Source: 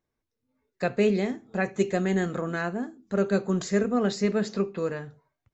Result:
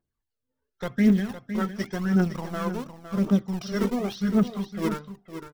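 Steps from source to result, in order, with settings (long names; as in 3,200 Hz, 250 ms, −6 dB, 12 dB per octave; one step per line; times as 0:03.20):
in parallel at −4.5 dB: centre clipping without the shift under −27 dBFS
on the sum: phase shifter 0.91 Hz, delay 2.3 ms, feedback 68%
formants moved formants −4 semitones
single-tap delay 509 ms −10.5 dB
level −7 dB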